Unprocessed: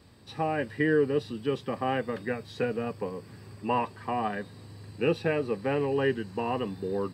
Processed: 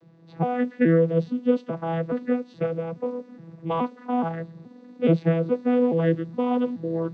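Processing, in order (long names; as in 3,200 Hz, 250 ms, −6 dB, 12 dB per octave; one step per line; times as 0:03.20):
vocoder with an arpeggio as carrier bare fifth, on E3, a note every 422 ms
one half of a high-frequency compander decoder only
level +6.5 dB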